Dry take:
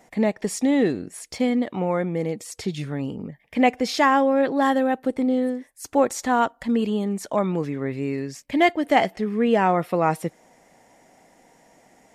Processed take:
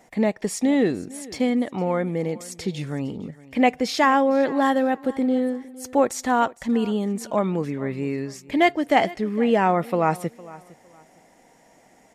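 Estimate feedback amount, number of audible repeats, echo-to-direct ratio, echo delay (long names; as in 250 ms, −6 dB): 25%, 2, −19.5 dB, 458 ms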